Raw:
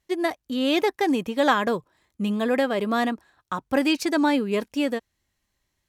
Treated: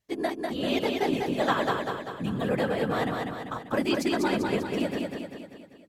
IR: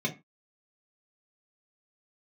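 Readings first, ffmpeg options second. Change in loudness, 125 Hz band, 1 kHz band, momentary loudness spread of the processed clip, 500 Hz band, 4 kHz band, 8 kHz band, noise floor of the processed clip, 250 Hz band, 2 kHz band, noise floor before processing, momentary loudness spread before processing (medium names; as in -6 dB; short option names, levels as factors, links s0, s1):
-4.0 dB, +4.0 dB, -3.5 dB, 9 LU, -3.0 dB, -4.0 dB, -4.0 dB, -50 dBFS, -5.0 dB, -4.0 dB, -78 dBFS, 9 LU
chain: -af "afftfilt=real='hypot(re,im)*cos(2*PI*random(0))':imag='hypot(re,im)*sin(2*PI*random(1))':win_size=512:overlap=0.75,aecho=1:1:196|392|588|784|980|1176|1372:0.668|0.354|0.188|0.0995|0.0527|0.0279|0.0148"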